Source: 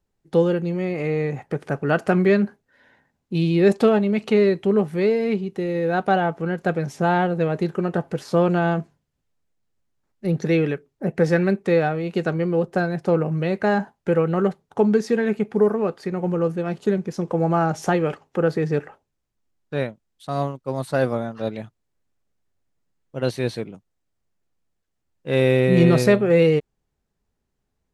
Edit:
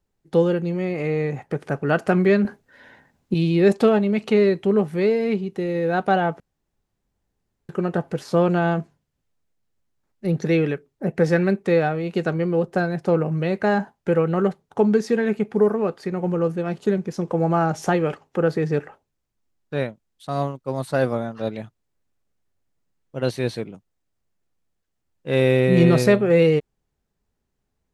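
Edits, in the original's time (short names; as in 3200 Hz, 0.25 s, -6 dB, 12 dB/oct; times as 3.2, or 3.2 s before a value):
2.45–3.34 gain +8 dB
6.4–7.69 room tone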